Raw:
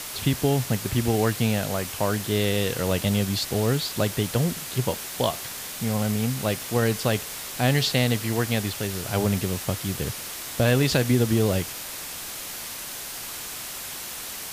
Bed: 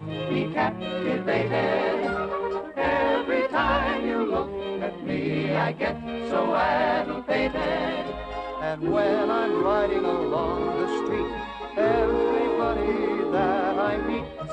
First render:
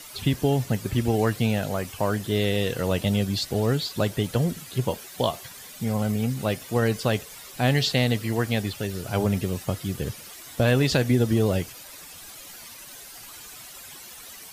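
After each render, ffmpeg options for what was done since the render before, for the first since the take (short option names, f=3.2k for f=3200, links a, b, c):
-af "afftdn=nr=12:nf=-36"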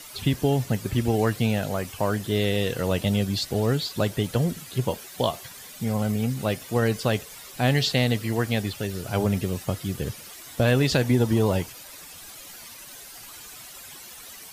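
-filter_complex "[0:a]asettb=1/sr,asplit=3[a][b][c];[a]atrim=end=11.034[d];[b]atrim=start=11.03:end=11.67,asetpts=PTS-STARTPTS,afade=t=in:d=0.004:c=qsin,afade=t=out:st=0.636:d=0.004:c=qsin,equalizer=f=930:t=o:w=0.31:g=11.5[e];[c]atrim=start=11.666[f];[d][e]acrossfade=d=0.004:c1=hsin:c2=qsin[g];[g][f]acrossfade=d=0.004:c1=qsin:c2=hsin"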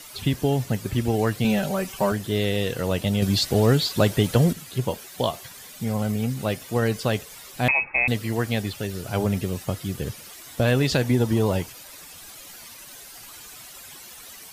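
-filter_complex "[0:a]asettb=1/sr,asplit=3[a][b][c];[a]atrim=end=1.444[d];[b]atrim=start=1.44:end=2.12,asetpts=PTS-STARTPTS,afade=t=in:d=0.004:c=qsin,afade=t=out:st=0.676:d=0.004:c=qsin,aecho=1:1:5.2:0.92,atrim=end_sample=29988[e];[c]atrim=start=2.116[f];[d][e]acrossfade=d=0.004:c1=hsin:c2=qsin[g];[g][f]acrossfade=d=0.004:c1=qsin:c2=hsin,asettb=1/sr,asplit=3[h][i][j];[h]atrim=end=3.224[k];[i]atrim=start=3.22:end=4.53,asetpts=PTS-STARTPTS,afade=t=in:d=0.004:c=qsin,afade=t=out:st=1.306:d=0.004:c=qsin,acontrast=31[l];[j]atrim=start=4.526[m];[k][l]acrossfade=d=0.004:c1=hsin:c2=qsin[n];[n][m]acrossfade=d=0.004:c1=qsin:c2=hsin,asettb=1/sr,asplit=3[o][p][q];[o]atrim=end=7.684[r];[p]atrim=start=7.68:end=8.08,asetpts=PTS-STARTPTS,afade=t=in:d=0.004:c=qsin,afade=t=out:st=0.396:d=0.004:c=qsin,lowpass=f=2.3k:t=q:w=0.5098,lowpass=f=2.3k:t=q:w=0.6013,lowpass=f=2.3k:t=q:w=0.9,lowpass=f=2.3k:t=q:w=2.563,afreqshift=-2700[s];[q]atrim=start=8.076[t];[r][s]acrossfade=d=0.004:c1=hsin:c2=qsin[u];[u][t]acrossfade=d=0.004:c1=qsin:c2=hsin"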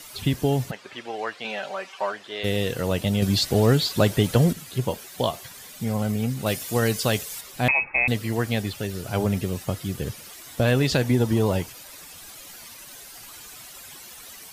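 -filter_complex "[0:a]asplit=3[a][b][c];[a]afade=t=out:st=0.7:d=0.02[d];[b]highpass=690,lowpass=3.8k,afade=t=in:st=0.7:d=0.02,afade=t=out:st=2.43:d=0.02[e];[c]afade=t=in:st=2.43:d=0.02[f];[d][e][f]amix=inputs=3:normalize=0,asettb=1/sr,asplit=3[g][h][i];[g]atrim=end=6.464[j];[h]atrim=start=6.46:end=7.41,asetpts=PTS-STARTPTS,afade=t=in:d=0.004:c=qsin,afade=t=out:st=0.946:d=0.004:c=qsin,highshelf=f=3.5k:g=9.5[k];[i]atrim=start=7.406[l];[j][k]acrossfade=d=0.004:c1=hsin:c2=qsin[m];[m][l]acrossfade=d=0.004:c1=qsin:c2=hsin"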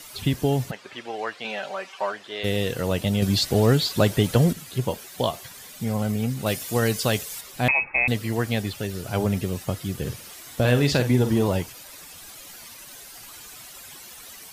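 -filter_complex "[0:a]asettb=1/sr,asplit=3[a][b][c];[a]atrim=end=9.994[d];[b]atrim=start=9.99:end=11.48,asetpts=PTS-STARTPTS,afade=t=in:d=0.004:c=qsin,afade=t=out:st=1.486:d=0.004:c=qsin,asplit=2[e][f];[f]adelay=49,volume=-9.5dB[g];[e][g]amix=inputs=2:normalize=0,atrim=end_sample=65709[h];[c]atrim=start=11.476[i];[d][h]acrossfade=d=0.004:c1=hsin:c2=qsin[j];[j][i]acrossfade=d=0.004:c1=qsin:c2=hsin"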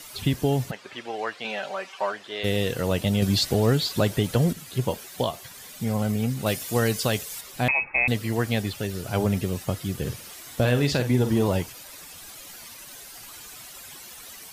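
-af "alimiter=limit=-11.5dB:level=0:latency=1:release=457"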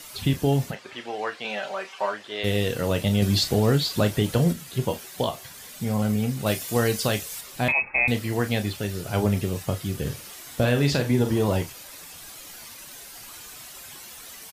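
-af "aecho=1:1:29|42:0.299|0.178"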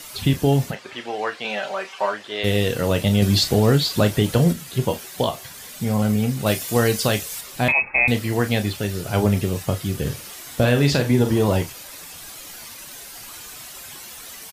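-af "volume=4dB"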